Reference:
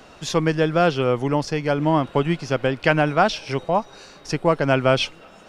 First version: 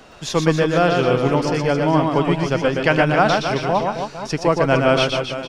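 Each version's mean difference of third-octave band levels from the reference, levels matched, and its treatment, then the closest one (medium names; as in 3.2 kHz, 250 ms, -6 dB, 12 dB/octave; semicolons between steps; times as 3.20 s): 6.0 dB: reverse bouncing-ball echo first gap 120 ms, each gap 1.25×, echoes 5; trim +1 dB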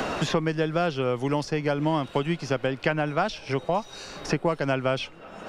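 4.0 dB: three bands compressed up and down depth 100%; trim -6.5 dB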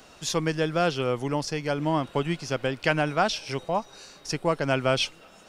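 2.5 dB: treble shelf 4.4 kHz +11 dB; trim -6.5 dB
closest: third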